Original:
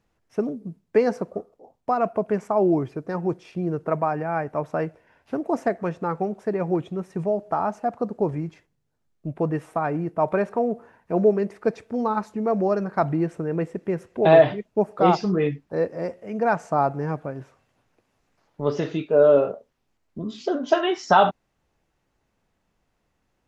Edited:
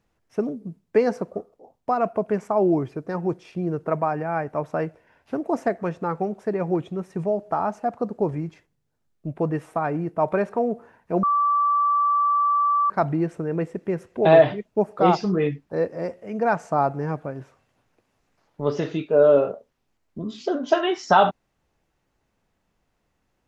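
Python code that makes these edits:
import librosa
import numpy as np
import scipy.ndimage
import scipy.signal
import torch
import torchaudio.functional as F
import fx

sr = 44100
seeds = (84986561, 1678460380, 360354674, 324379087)

y = fx.edit(x, sr, fx.bleep(start_s=11.23, length_s=1.67, hz=1160.0, db=-17.0), tone=tone)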